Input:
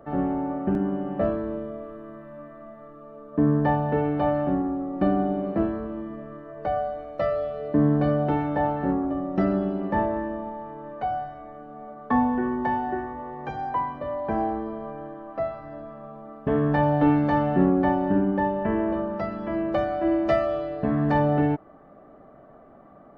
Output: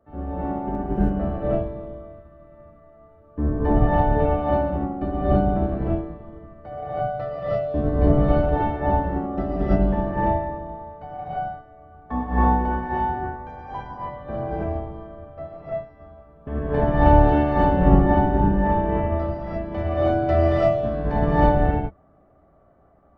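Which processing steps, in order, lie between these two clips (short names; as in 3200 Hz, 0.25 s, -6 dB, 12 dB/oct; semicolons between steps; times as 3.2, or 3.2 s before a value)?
octaver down 2 oct, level +3 dB; non-linear reverb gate 0.36 s rising, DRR -8 dB; upward expander 1.5:1, over -32 dBFS; gain -3.5 dB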